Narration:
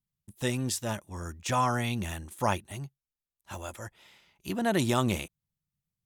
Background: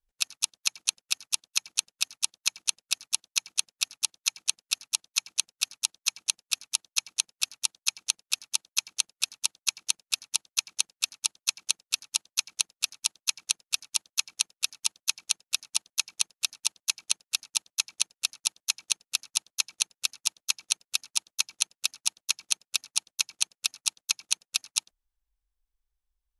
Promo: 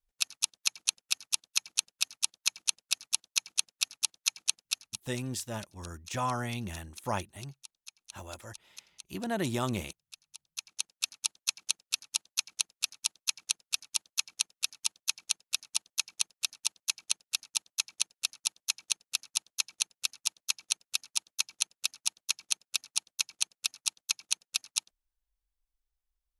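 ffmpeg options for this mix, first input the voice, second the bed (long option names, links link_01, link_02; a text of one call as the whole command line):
ffmpeg -i stem1.wav -i stem2.wav -filter_complex "[0:a]adelay=4650,volume=-5dB[link_01];[1:a]volume=16.5dB,afade=type=out:start_time=4.64:duration=0.4:silence=0.1,afade=type=in:start_time=10.39:duration=0.7:silence=0.11885[link_02];[link_01][link_02]amix=inputs=2:normalize=0" out.wav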